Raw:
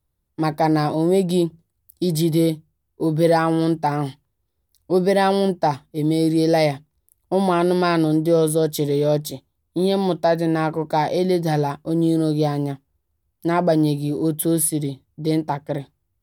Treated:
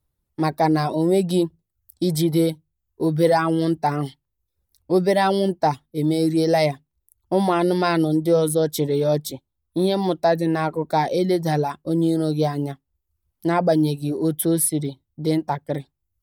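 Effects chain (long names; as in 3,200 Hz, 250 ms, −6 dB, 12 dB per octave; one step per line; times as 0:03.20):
reverb reduction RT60 0.53 s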